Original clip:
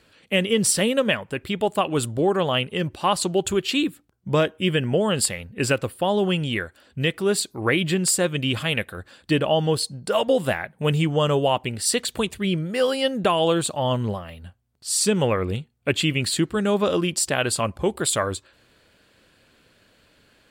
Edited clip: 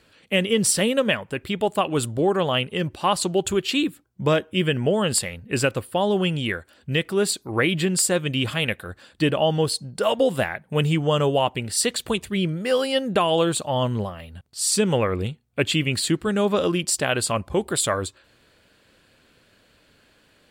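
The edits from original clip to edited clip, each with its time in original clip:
compress silence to 20%

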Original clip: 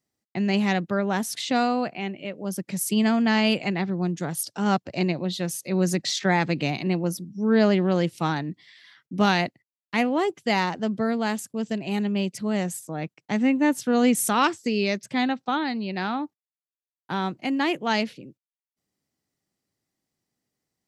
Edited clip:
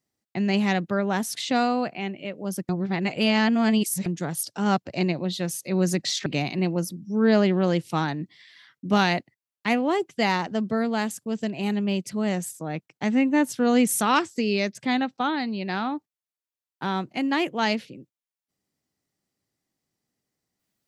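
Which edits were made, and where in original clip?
0:02.69–0:04.06: reverse
0:06.26–0:06.54: remove

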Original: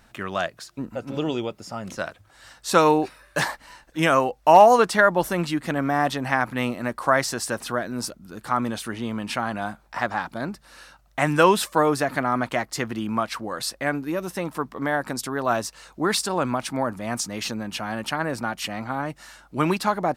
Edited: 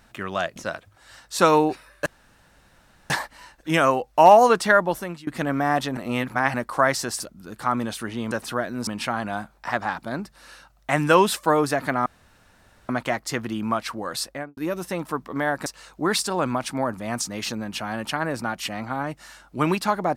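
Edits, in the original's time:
0:00.56–0:01.89: remove
0:03.39: splice in room tone 1.04 s
0:05.05–0:05.56: fade out, to −22 dB
0:06.26–0:06.83: reverse
0:07.49–0:08.05: move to 0:09.16
0:12.35: splice in room tone 0.83 s
0:13.70–0:14.03: fade out and dull
0:15.12–0:15.65: remove

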